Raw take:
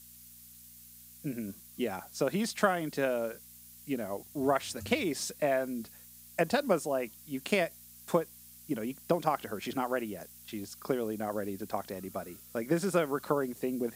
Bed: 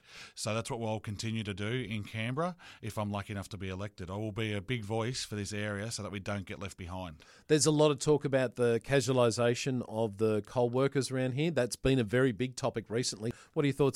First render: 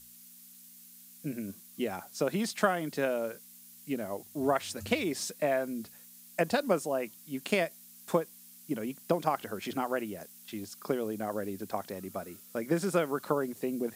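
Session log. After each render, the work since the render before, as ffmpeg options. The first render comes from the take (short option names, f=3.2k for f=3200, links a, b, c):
-af "bandreject=f=60:t=h:w=4,bandreject=f=120:t=h:w=4"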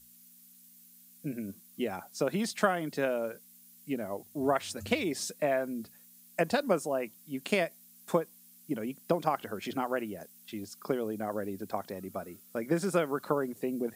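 -af "afftdn=nr=6:nf=-54"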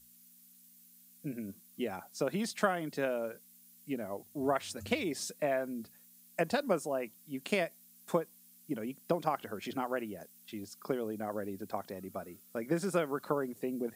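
-af "volume=-3dB"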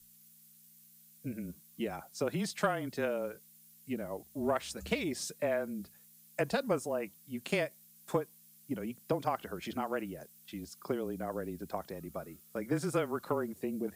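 -af "afreqshift=-24,asoftclip=type=tanh:threshold=-16.5dB"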